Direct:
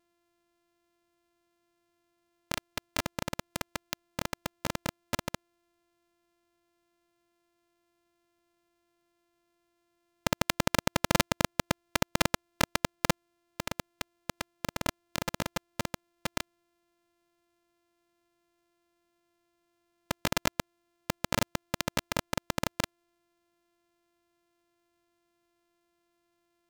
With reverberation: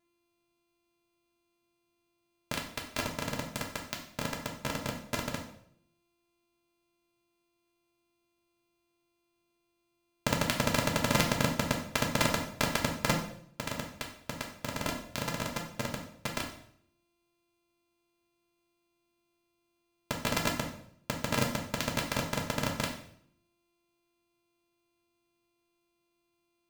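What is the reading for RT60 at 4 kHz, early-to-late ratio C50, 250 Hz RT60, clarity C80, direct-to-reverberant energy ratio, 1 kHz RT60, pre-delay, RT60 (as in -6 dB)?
0.60 s, 7.0 dB, 0.75 s, 10.5 dB, 0.0 dB, 0.60 s, 3 ms, 0.65 s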